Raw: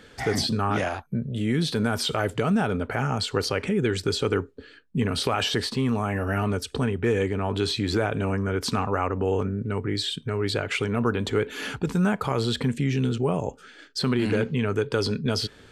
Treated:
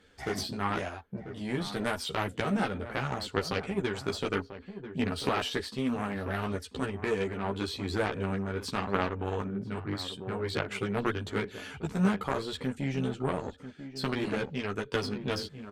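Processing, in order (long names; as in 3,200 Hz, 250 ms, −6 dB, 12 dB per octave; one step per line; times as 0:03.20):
harmonic generator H 3 −12 dB, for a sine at −10 dBFS
slap from a distant wall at 170 metres, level −11 dB
multi-voice chorus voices 6, 0.79 Hz, delay 13 ms, depth 2.7 ms
level +3.5 dB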